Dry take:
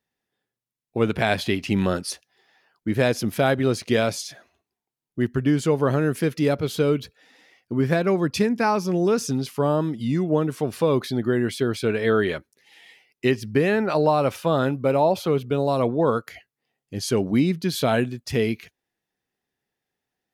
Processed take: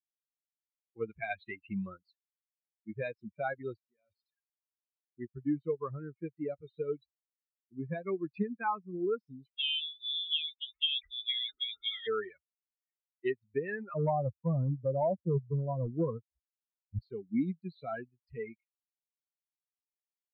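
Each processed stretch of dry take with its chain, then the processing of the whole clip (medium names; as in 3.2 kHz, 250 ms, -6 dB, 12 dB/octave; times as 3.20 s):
3.77–4.26 s: low-pass 11 kHz + level held to a coarse grid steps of 17 dB + doubling 21 ms -9.5 dB
9.53–12.07 s: companding laws mixed up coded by A + transient shaper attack +1 dB, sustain +6 dB + frequency inversion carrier 3.7 kHz
13.94–16.99 s: low-pass 1 kHz 24 dB/octave + bass shelf 210 Hz +12 dB + hard clipper -13 dBFS
whole clip: expander on every frequency bin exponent 3; steep low-pass 3.5 kHz 72 dB/octave; trim -6.5 dB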